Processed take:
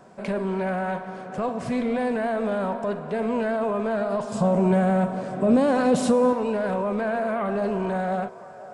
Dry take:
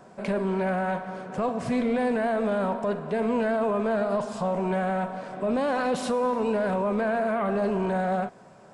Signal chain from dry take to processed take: 4.32–6.33 ten-band EQ 125 Hz +12 dB, 250 Hz +6 dB, 500 Hz +4 dB, 8000 Hz +7 dB; band-limited delay 0.508 s, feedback 56%, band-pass 840 Hz, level -16 dB

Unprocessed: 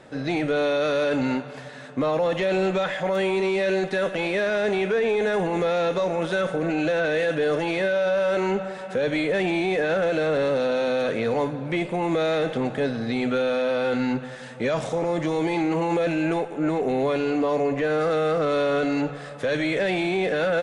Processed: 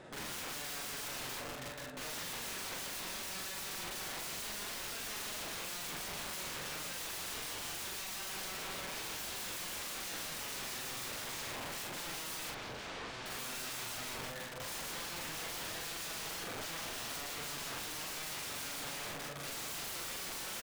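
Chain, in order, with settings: 8.69–9.17 low shelf 450 Hz +6 dB; limiter -19 dBFS, peak gain reduction 6 dB; tremolo saw down 6.2 Hz, depth 65%; wrapped overs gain 35.5 dB; 12.5–13.26 air absorption 120 m; doubler 43 ms -2 dB; outdoor echo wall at 62 m, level -12 dB; gain -4 dB

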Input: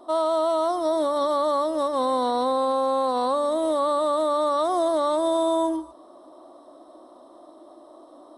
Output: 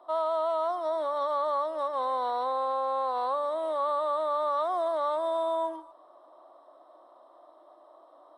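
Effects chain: three-band isolator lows -23 dB, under 530 Hz, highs -17 dB, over 3100 Hz; gain -3 dB

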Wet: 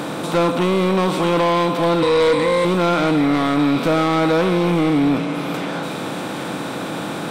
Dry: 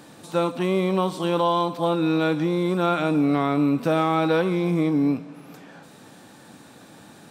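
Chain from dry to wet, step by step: per-bin compression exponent 0.6; in parallel at -0.5 dB: vocal rider within 4 dB; 2.02–2.65 on the sum: ripple EQ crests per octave 0.97, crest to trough 18 dB; soft clip -11.5 dBFS, distortion -12 dB; on a send: delay with a stepping band-pass 0.783 s, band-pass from 2500 Hz, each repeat 0.7 oct, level -5 dB

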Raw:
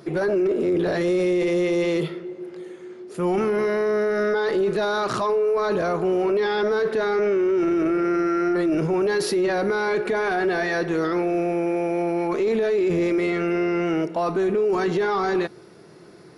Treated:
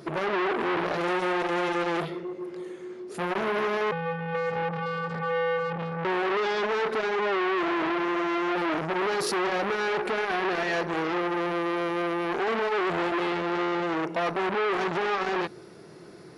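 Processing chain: 3.91–6.05 vocoder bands 8, square 166 Hz; core saturation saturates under 1400 Hz

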